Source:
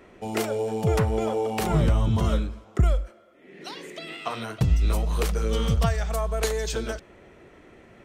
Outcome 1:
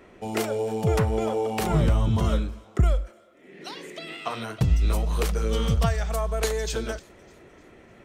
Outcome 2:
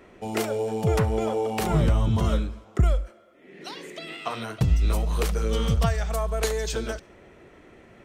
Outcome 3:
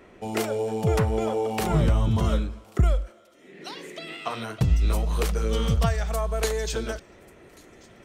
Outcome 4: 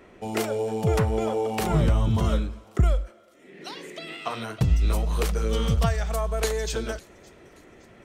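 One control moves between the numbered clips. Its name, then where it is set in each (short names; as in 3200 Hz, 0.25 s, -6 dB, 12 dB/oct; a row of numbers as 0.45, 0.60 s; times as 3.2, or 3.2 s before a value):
thin delay, time: 302, 70, 1139, 566 ms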